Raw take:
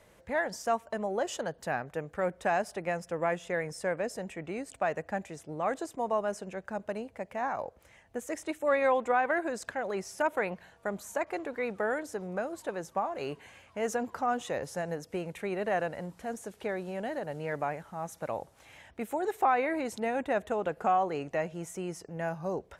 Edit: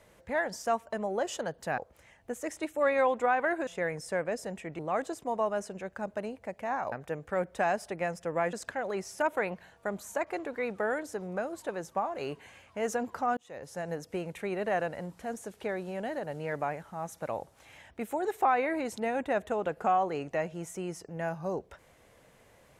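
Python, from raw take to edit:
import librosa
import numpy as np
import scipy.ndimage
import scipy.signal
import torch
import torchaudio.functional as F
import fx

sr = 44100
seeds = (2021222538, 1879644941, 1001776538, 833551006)

y = fx.edit(x, sr, fx.swap(start_s=1.78, length_s=1.61, other_s=7.64, other_length_s=1.89),
    fx.cut(start_s=4.51, length_s=1.0),
    fx.fade_in_span(start_s=14.37, length_s=0.58), tone=tone)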